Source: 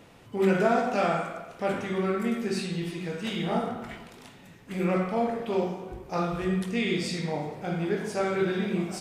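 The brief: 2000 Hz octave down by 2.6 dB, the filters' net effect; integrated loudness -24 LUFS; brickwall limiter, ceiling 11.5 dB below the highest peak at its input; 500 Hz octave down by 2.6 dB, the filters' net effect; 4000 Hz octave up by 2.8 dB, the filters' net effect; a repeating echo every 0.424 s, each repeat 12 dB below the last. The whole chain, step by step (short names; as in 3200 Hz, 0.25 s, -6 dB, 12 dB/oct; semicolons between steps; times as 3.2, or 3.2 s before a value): bell 500 Hz -3.5 dB; bell 2000 Hz -4.5 dB; bell 4000 Hz +5 dB; limiter -24 dBFS; feedback echo 0.424 s, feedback 25%, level -12 dB; gain +9.5 dB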